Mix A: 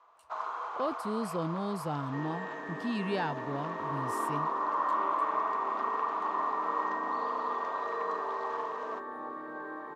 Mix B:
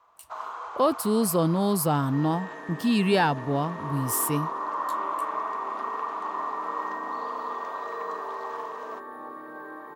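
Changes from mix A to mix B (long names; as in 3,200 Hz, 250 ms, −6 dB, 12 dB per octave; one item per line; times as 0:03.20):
speech +10.5 dB
master: remove high-frequency loss of the air 69 metres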